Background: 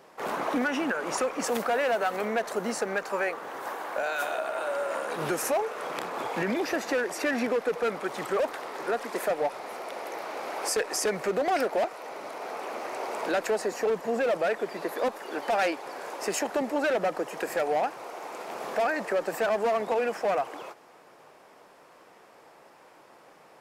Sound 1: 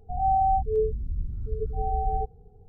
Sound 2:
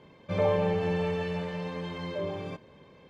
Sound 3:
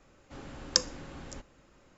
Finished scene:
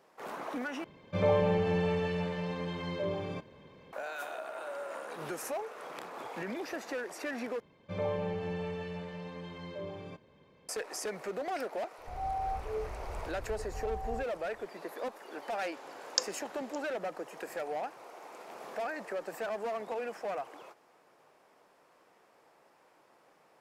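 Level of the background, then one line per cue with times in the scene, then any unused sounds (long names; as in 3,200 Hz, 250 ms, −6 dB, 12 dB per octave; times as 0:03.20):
background −10 dB
0:00.84: overwrite with 2 −1 dB
0:07.60: overwrite with 2 −8 dB
0:11.98: mix in 1 −12.5 dB
0:15.42: mix in 3 −3.5 dB + Chebyshev high-pass filter 520 Hz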